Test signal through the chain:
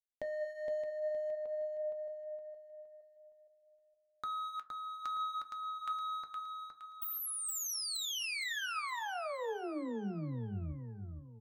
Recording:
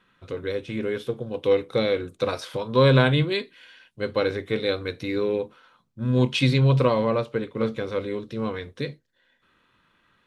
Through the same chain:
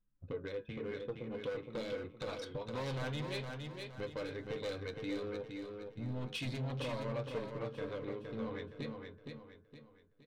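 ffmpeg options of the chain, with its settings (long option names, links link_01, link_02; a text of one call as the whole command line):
ffmpeg -i in.wav -filter_complex "[0:a]asoftclip=type=hard:threshold=-20dB,anlmdn=2.51,bandreject=frequency=380:width=12,acompressor=threshold=-40dB:ratio=5,asoftclip=type=tanh:threshold=-31.5dB,flanger=delay=3.1:depth=3.8:regen=75:speed=0.57:shape=sinusoidal,bandreject=frequency=108.4:width_type=h:width=4,bandreject=frequency=216.8:width_type=h:width=4,bandreject=frequency=325.2:width_type=h:width=4,bandreject=frequency=433.6:width_type=h:width=4,bandreject=frequency=542:width_type=h:width=4,bandreject=frequency=650.4:width_type=h:width=4,bandreject=frequency=758.8:width_type=h:width=4,bandreject=frequency=867.2:width_type=h:width=4,bandreject=frequency=975.6:width_type=h:width=4,bandreject=frequency=1084:width_type=h:width=4,bandreject=frequency=1192.4:width_type=h:width=4,bandreject=frequency=1300.8:width_type=h:width=4,bandreject=frequency=1409.2:width_type=h:width=4,bandreject=frequency=1517.6:width_type=h:width=4,bandreject=frequency=1626:width_type=h:width=4,bandreject=frequency=1734.4:width_type=h:width=4,flanger=delay=6.8:depth=1.9:regen=-73:speed=0.26:shape=triangular,asplit=2[link_01][link_02];[link_02]aecho=0:1:466|932|1398|1864|2330:0.562|0.219|0.0855|0.0334|0.013[link_03];[link_01][link_03]amix=inputs=2:normalize=0,volume=9.5dB" out.wav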